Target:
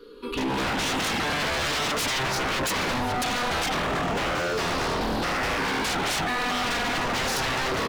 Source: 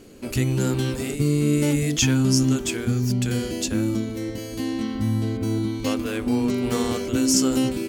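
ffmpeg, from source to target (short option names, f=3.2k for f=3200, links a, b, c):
-filter_complex "[0:a]afftfilt=real='re*pow(10,15/40*sin(2*PI*(0.61*log(max(b,1)*sr/1024/100)/log(2)-(-0.39)*(pts-256)/sr)))':imag='im*pow(10,15/40*sin(2*PI*(0.61*log(max(b,1)*sr/1024/100)/log(2)-(-0.39)*(pts-256)/sr)))':win_size=1024:overlap=0.75,asuperstop=centerf=670:order=8:qfactor=3.3,lowshelf=f=73:g=7,aecho=1:1:4.2:0.83,asplit=2[a][b];[b]adelay=118,lowpass=f=860:p=1,volume=-8.5dB,asplit=2[c][d];[d]adelay=118,lowpass=f=860:p=1,volume=0.52,asplit=2[e][f];[f]adelay=118,lowpass=f=860:p=1,volume=0.52,asplit=2[g][h];[h]adelay=118,lowpass=f=860:p=1,volume=0.52,asplit=2[i][j];[j]adelay=118,lowpass=f=860:p=1,volume=0.52,asplit=2[k][l];[l]adelay=118,lowpass=f=860:p=1,volume=0.52[m];[a][c][e][g][i][k][m]amix=inputs=7:normalize=0,acrossover=split=260|1300|3800[n][o][p][q];[q]acompressor=threshold=-41dB:ratio=8[r];[n][o][p][r]amix=inputs=4:normalize=0,acrossover=split=280 4200:gain=0.141 1 0.112[s][t][u];[s][t][u]amix=inputs=3:normalize=0,alimiter=limit=-16.5dB:level=0:latency=1:release=216,dynaudnorm=f=120:g=9:m=13dB,aeval=exprs='0.106*(abs(mod(val(0)/0.106+3,4)-2)-1)':c=same,volume=-2dB"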